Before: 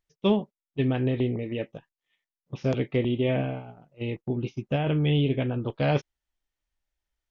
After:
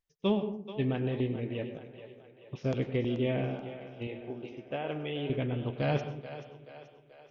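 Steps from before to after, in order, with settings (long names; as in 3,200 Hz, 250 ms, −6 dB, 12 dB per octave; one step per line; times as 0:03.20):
0:04.07–0:05.30: bass and treble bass −15 dB, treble −11 dB
echo with a time of its own for lows and highs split 390 Hz, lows 224 ms, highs 432 ms, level −12 dB
convolution reverb RT60 0.50 s, pre-delay 93 ms, DRR 10 dB
level −5.5 dB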